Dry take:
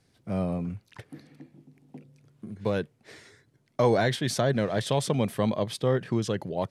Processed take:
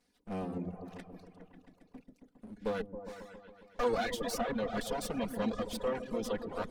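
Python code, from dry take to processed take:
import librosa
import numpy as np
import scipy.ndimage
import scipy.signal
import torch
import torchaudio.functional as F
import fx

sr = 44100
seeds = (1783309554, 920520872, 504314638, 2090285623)

p1 = fx.lower_of_two(x, sr, delay_ms=4.1)
p2 = fx.peak_eq(p1, sr, hz=99.0, db=-8.5, octaves=0.79)
p3 = p2 + fx.echo_opening(p2, sr, ms=136, hz=400, octaves=1, feedback_pct=70, wet_db=-3, dry=0)
p4 = fx.dereverb_blind(p3, sr, rt60_s=0.9)
y = p4 * librosa.db_to_amplitude(-5.5)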